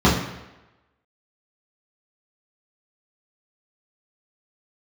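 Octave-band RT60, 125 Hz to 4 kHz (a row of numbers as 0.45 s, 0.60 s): 0.80 s, 0.85 s, 1.0 s, 1.0 s, 1.0 s, 0.85 s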